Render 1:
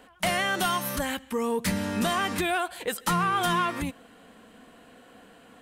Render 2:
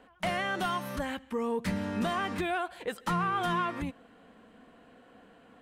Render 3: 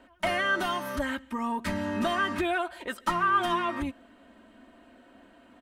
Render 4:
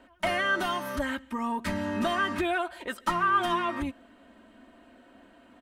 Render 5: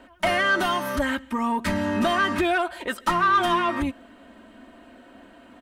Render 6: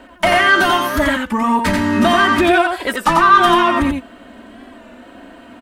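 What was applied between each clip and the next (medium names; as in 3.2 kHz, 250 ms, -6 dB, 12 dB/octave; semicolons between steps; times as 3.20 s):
low-pass 2.2 kHz 6 dB/octave; trim -3.5 dB
dynamic bell 1.3 kHz, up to +5 dB, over -44 dBFS, Q 1.4; comb 3.2 ms, depth 79%
no audible change
saturation -19 dBFS, distortion -20 dB; trim +6.5 dB
delay 89 ms -4 dB; warped record 33 1/3 rpm, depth 100 cents; trim +8 dB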